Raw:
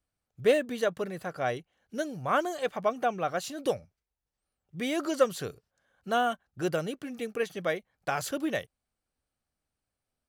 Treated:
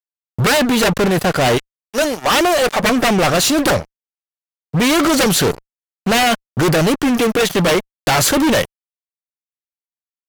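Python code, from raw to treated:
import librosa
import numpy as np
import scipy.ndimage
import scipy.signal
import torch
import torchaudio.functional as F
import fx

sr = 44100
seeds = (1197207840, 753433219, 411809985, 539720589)

y = fx.highpass(x, sr, hz=fx.line((1.57, 830.0), (2.82, 260.0)), slope=12, at=(1.57, 2.82), fade=0.02)
y = fx.cheby_harmonics(y, sr, harmonics=(5, 7), levels_db=(-27, -7), full_scale_db=-10.0)
y = fx.fuzz(y, sr, gain_db=38.0, gate_db=-46.0)
y = fx.wow_flutter(y, sr, seeds[0], rate_hz=2.1, depth_cents=26.0)
y = y * 10.0 ** (1.0 / 20.0)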